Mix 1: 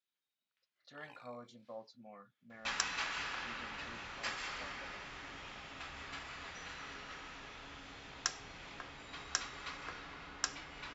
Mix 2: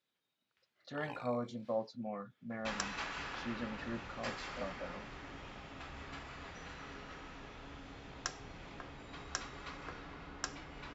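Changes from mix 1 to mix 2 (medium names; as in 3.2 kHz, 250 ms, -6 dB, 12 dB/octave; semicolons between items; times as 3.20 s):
speech +10.0 dB; first sound +11.5 dB; master: add tilt shelf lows +5.5 dB, about 910 Hz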